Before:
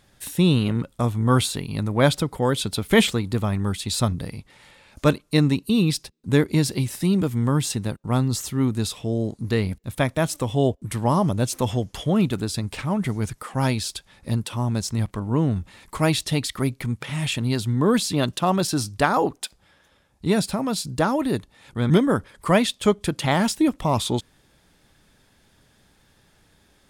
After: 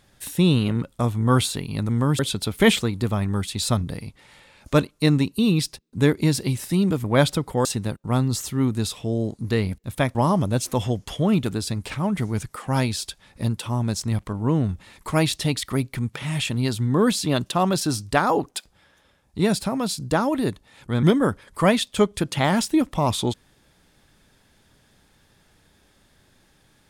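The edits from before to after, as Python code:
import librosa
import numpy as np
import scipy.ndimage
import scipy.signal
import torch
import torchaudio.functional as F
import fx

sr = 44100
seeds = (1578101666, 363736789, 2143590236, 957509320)

y = fx.edit(x, sr, fx.swap(start_s=1.89, length_s=0.61, other_s=7.35, other_length_s=0.3),
    fx.cut(start_s=10.15, length_s=0.87), tone=tone)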